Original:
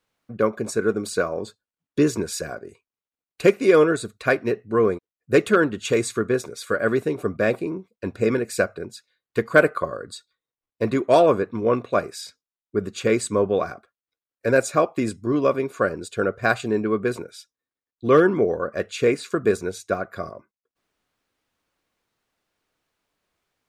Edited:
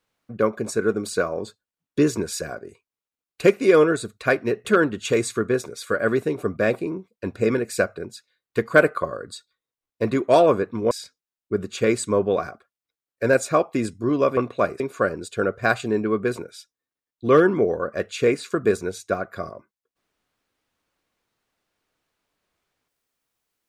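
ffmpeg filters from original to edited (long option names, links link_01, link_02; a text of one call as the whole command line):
ffmpeg -i in.wav -filter_complex "[0:a]asplit=5[link_01][link_02][link_03][link_04][link_05];[link_01]atrim=end=4.652[link_06];[link_02]atrim=start=5.448:end=11.712[link_07];[link_03]atrim=start=12.138:end=15.602[link_08];[link_04]atrim=start=11.708:end=12.142[link_09];[link_05]atrim=start=15.598[link_10];[link_06][link_07]acrossfade=duration=0.004:curve1=hsin:curve2=hsin[link_11];[link_11][link_08]acrossfade=duration=0.004:curve1=hsin:curve2=hsin[link_12];[link_12][link_09]acrossfade=duration=0.004:curve1=hsin:curve2=hsin[link_13];[link_13][link_10]acrossfade=duration=0.004:curve1=hsin:curve2=hsin" out.wav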